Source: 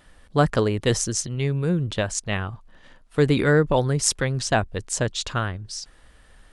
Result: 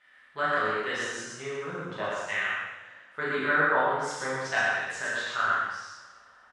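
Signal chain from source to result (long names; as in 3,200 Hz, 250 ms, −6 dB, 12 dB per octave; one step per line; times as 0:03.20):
auto-filter band-pass saw down 0.45 Hz 980–2,000 Hz
loudspeakers that aren't time-aligned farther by 13 metres −4 dB, 41 metres −2 dB
coupled-rooms reverb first 0.96 s, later 2.5 s, from −18 dB, DRR −6 dB
level −3.5 dB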